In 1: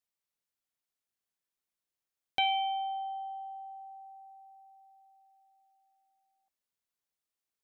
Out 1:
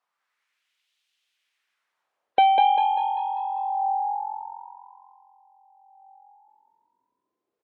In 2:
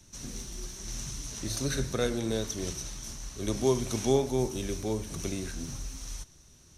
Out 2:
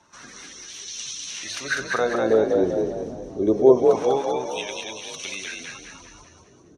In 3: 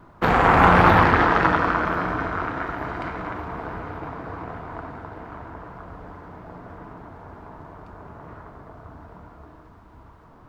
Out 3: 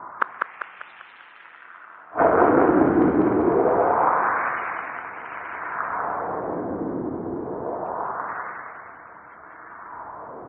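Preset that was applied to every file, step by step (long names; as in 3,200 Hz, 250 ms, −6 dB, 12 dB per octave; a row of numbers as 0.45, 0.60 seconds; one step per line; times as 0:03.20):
gate on every frequency bin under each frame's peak −30 dB strong
auto-filter band-pass sine 0.25 Hz 280–3,200 Hz
gate with flip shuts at −21 dBFS, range −37 dB
echo with shifted repeats 197 ms, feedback 46%, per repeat +44 Hz, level −3 dB
AAC 96 kbit/s 48,000 Hz
loudness normalisation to −23 LKFS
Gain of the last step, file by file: +23.0, +17.0, +18.0 decibels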